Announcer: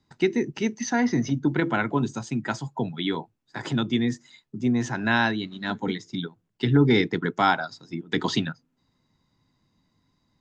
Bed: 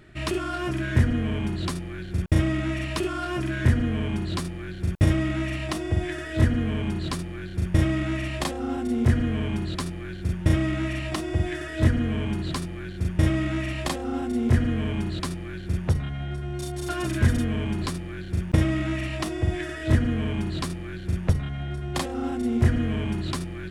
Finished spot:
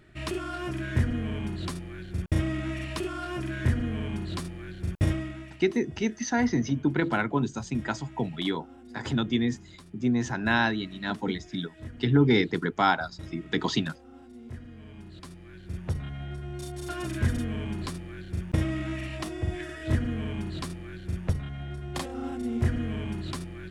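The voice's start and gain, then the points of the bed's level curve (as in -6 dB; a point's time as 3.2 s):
5.40 s, -2.0 dB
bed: 5.09 s -5 dB
5.64 s -21 dB
14.72 s -21 dB
16.08 s -5.5 dB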